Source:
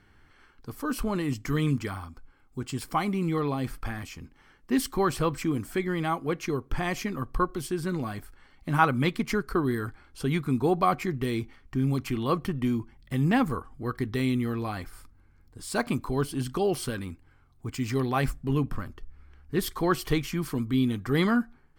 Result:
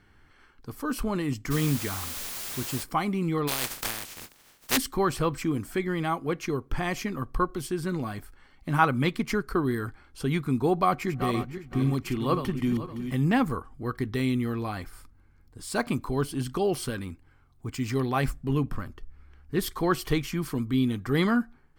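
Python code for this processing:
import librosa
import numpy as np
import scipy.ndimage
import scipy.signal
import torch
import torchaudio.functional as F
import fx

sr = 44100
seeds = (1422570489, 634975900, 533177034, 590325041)

y = fx.quant_dither(x, sr, seeds[0], bits=6, dither='triangular', at=(1.5, 2.82), fade=0.02)
y = fx.spec_flatten(y, sr, power=0.2, at=(3.47, 4.76), fade=0.02)
y = fx.reverse_delay_fb(y, sr, ms=257, feedback_pct=46, wet_db=-8, at=(10.81, 13.15))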